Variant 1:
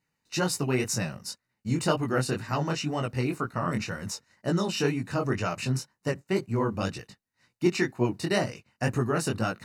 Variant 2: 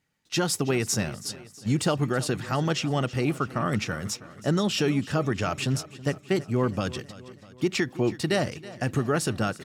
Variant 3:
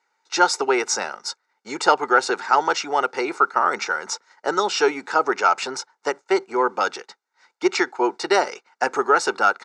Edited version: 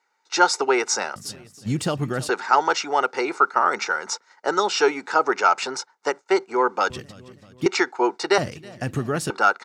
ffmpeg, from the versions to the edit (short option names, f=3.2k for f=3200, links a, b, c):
-filter_complex "[1:a]asplit=3[a][b][c];[2:a]asplit=4[d][e][f][g];[d]atrim=end=1.162[h];[a]atrim=start=1.158:end=2.292[i];[e]atrim=start=2.288:end=6.902[j];[b]atrim=start=6.898:end=7.662[k];[f]atrim=start=7.658:end=8.382[l];[c]atrim=start=8.378:end=9.302[m];[g]atrim=start=9.298[n];[h][i]acrossfade=d=0.004:c1=hsin:c2=hsin[o];[o][j]acrossfade=d=0.004:c1=hsin:c2=hsin[p];[p][k]acrossfade=d=0.004:c1=hsin:c2=hsin[q];[q][l]acrossfade=d=0.004:c1=hsin:c2=hsin[r];[r][m]acrossfade=d=0.004:c1=hsin:c2=hsin[s];[s][n]acrossfade=d=0.004:c1=hsin:c2=hsin"